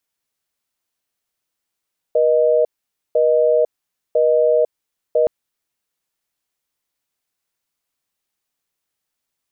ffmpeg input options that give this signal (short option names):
-f lavfi -i "aevalsrc='0.188*(sin(2*PI*480*t)+sin(2*PI*620*t))*clip(min(mod(t,1),0.5-mod(t,1))/0.005,0,1)':d=3.12:s=44100"